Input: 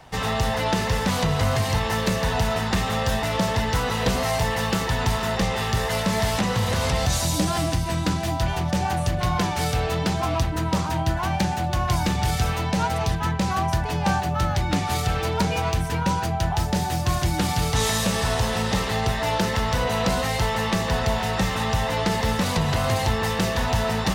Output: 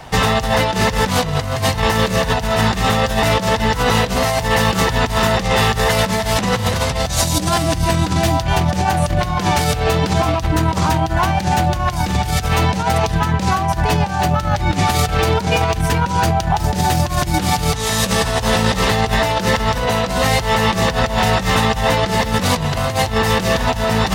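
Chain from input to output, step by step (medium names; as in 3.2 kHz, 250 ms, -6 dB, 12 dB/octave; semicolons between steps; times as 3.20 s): compressor with a negative ratio -25 dBFS, ratio -0.5; trim +9 dB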